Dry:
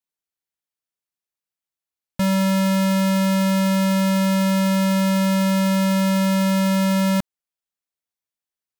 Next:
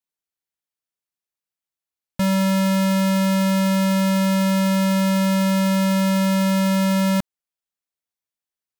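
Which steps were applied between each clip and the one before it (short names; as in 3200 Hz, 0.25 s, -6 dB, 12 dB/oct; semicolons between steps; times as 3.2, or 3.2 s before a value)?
nothing audible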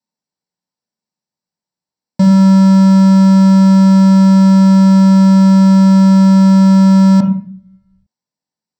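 reverb RT60 0.40 s, pre-delay 3 ms, DRR 2 dB; in parallel at 0 dB: limiter -6.5 dBFS, peak gain reduction 10 dB; on the sum: bell 12000 Hz -9.5 dB 0.45 oct; gain -7 dB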